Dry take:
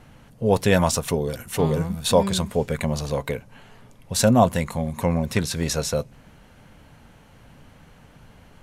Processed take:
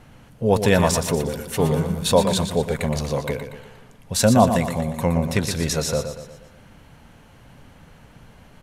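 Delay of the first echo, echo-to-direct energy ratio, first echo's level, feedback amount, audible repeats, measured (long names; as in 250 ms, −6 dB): 119 ms, −7.5 dB, −8.5 dB, 47%, 5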